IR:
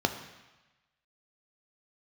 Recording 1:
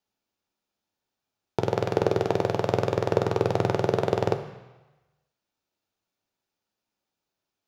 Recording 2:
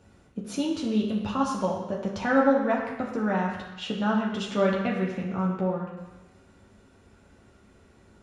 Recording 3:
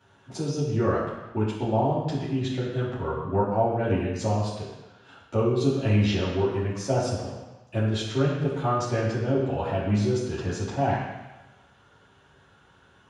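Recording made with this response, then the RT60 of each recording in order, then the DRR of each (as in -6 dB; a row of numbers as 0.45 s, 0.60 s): 1; 1.1 s, 1.1 s, 1.1 s; 6.0 dB, -3.0 dB, -10.0 dB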